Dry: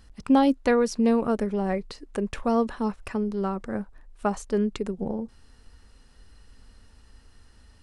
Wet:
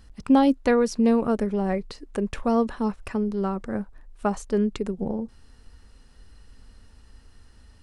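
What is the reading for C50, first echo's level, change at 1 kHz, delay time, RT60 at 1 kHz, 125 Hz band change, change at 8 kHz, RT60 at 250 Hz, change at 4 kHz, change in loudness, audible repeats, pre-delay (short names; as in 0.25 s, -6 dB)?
none, none, +0.5 dB, none, none, +2.0 dB, 0.0 dB, none, 0.0 dB, +1.5 dB, none, none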